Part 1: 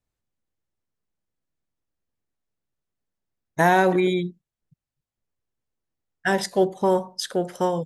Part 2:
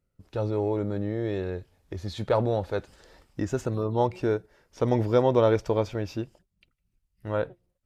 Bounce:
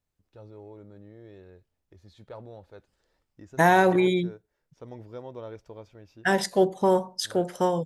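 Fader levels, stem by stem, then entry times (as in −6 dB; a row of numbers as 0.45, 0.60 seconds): −1.0, −19.0 decibels; 0.00, 0.00 seconds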